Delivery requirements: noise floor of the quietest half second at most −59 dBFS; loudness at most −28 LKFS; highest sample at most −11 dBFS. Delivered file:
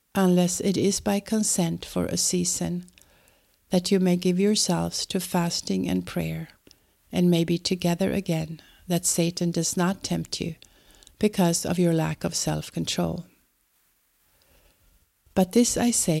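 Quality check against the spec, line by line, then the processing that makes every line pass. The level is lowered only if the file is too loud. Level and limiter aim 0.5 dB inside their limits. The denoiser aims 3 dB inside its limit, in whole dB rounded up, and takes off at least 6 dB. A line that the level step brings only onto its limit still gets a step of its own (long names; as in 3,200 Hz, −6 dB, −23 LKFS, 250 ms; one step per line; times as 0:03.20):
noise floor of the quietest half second −67 dBFS: in spec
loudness −24.5 LKFS: out of spec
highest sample −8.5 dBFS: out of spec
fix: level −4 dB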